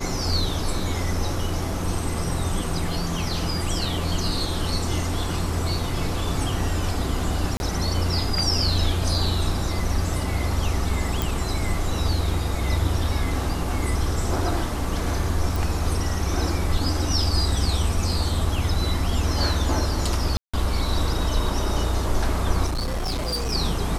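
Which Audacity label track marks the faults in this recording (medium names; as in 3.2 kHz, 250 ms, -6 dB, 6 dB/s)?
7.570000	7.600000	dropout 31 ms
11.220000	11.220000	pop
15.560000	15.560000	pop
20.370000	20.540000	dropout 165 ms
22.660000	23.530000	clipped -22.5 dBFS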